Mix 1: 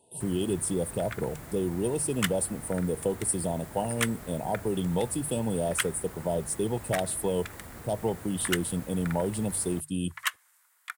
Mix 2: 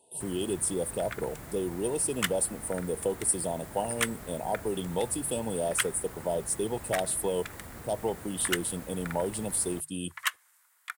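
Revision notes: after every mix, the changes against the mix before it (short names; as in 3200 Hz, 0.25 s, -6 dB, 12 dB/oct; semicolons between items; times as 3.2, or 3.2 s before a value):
speech: add tone controls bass -9 dB, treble +2 dB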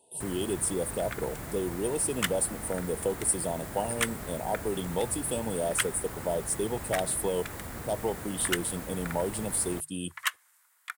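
first sound +5.0 dB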